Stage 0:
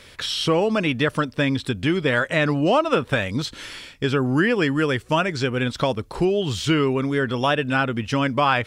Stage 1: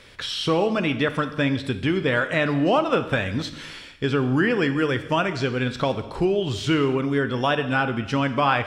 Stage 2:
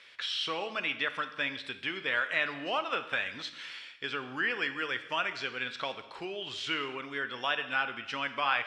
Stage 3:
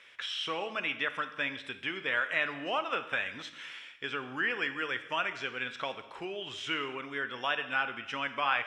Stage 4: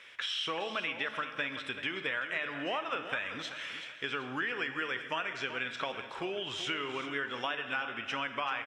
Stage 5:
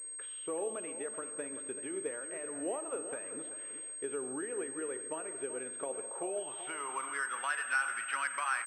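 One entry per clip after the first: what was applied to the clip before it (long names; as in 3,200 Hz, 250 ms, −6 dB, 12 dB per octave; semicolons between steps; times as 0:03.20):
high-shelf EQ 7,100 Hz −8.5 dB; reverb whose tail is shaped and stops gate 330 ms falling, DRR 9 dB; level −1.5 dB
resonant band-pass 2,500 Hz, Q 0.88; level −3 dB
parametric band 4,400 Hz −13 dB 0.33 octaves
downward compressor, threshold −34 dBFS, peak gain reduction 10.5 dB; repeating echo 383 ms, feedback 35%, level −11.5 dB; level +3 dB
band-pass filter sweep 410 Hz → 1,500 Hz, 0:05.84–0:07.51; switching amplifier with a slow clock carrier 8,400 Hz; level +5 dB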